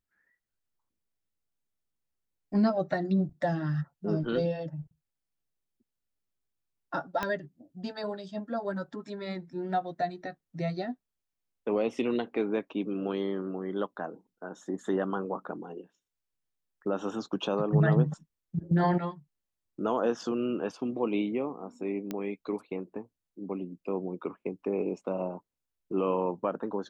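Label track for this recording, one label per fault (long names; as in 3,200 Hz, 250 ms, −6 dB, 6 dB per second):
7.230000	7.230000	click −16 dBFS
22.110000	22.110000	click −20 dBFS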